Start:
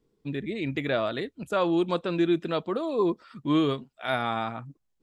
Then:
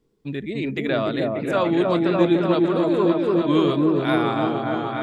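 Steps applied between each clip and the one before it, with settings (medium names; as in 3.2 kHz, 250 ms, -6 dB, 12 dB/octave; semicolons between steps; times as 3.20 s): delay with an opening low-pass 293 ms, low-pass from 750 Hz, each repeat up 1 oct, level 0 dB; trim +3 dB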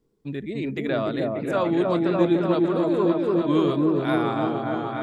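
peaking EQ 2.9 kHz -4 dB 1.5 oct; trim -2 dB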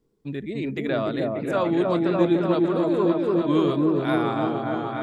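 no audible change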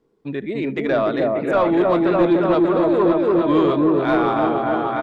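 delay 75 ms -23.5 dB; overdrive pedal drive 16 dB, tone 1.2 kHz, clips at -7 dBFS; trim +2 dB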